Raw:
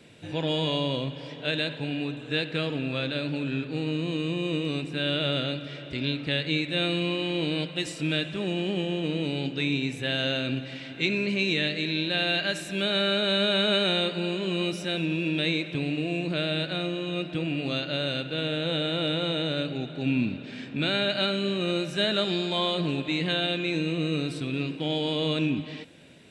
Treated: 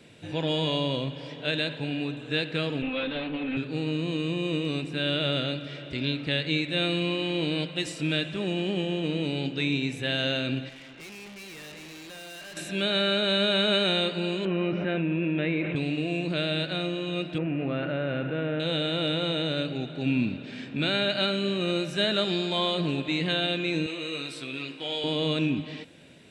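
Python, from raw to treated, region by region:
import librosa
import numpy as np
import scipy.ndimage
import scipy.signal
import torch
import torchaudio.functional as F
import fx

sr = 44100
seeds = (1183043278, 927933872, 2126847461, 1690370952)

y = fx.chain(x, sr, fx.lower_of_two(delay_ms=3.9),
    fx.steep_lowpass(hz=3600.0, slope=48), at=(2.82, 3.57))
y = fx.chain(y, sr, fx.lowpass(hz=3700.0, slope=12),
    fx.tube_stage(drive_db=41.0, bias=0.55),
    fx.low_shelf(hz=320.0, db=-4.5), at=(10.69, 12.57))
y = fx.chain(y, sr, fx.lowpass(hz=2300.0, slope=24),
    fx.env_flatten(amount_pct=70), at=(14.45, 15.76))
y = fx.chain(y, sr, fx.lowpass(hz=2100.0, slope=24),
    fx.env_flatten(amount_pct=70), at=(17.38, 18.6))
y = fx.chain(y, sr, fx.highpass(hz=890.0, slope=6),
    fx.doubler(ms=15.0, db=-4.5), at=(23.86, 25.04))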